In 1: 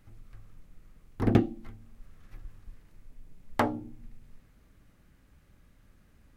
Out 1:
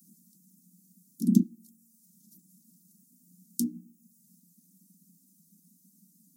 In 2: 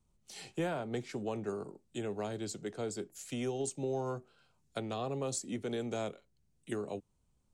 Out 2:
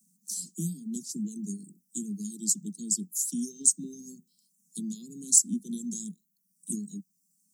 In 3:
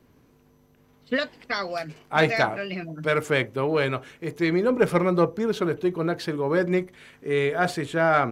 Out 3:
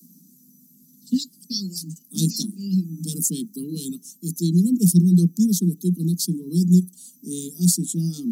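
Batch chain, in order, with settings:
inverse Chebyshev band-stop 550–2300 Hz, stop band 60 dB; reverb removal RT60 0.82 s; steep high-pass 170 Hz 96 dB/oct; high shelf 7900 Hz +9 dB; normalise peaks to -6 dBFS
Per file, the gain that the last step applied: +11.5, +15.5, +17.5 dB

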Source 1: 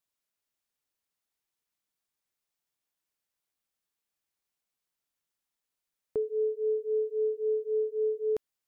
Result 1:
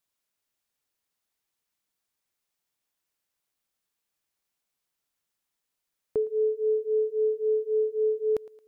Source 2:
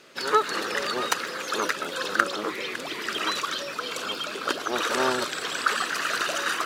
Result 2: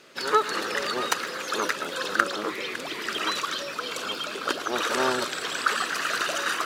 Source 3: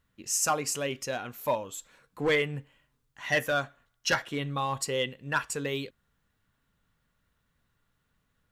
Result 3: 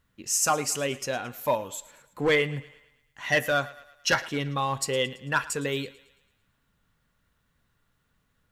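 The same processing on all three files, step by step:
thinning echo 0.111 s, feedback 52%, high-pass 370 Hz, level -18.5 dB; match loudness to -27 LUFS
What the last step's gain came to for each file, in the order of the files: +3.5, -0.5, +3.0 dB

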